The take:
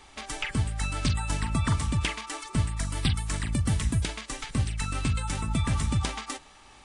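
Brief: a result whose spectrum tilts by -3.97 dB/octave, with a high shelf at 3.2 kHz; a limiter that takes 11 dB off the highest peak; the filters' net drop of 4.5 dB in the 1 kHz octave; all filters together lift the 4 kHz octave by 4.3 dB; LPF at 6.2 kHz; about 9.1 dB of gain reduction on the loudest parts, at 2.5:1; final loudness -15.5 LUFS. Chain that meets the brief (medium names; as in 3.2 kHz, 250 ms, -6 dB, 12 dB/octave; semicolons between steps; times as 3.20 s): low-pass 6.2 kHz; peaking EQ 1 kHz -6.5 dB; treble shelf 3.2 kHz +3.5 dB; peaking EQ 4 kHz +4 dB; compression 2.5:1, threshold -35 dBFS; trim +24 dB; peak limiter -5.5 dBFS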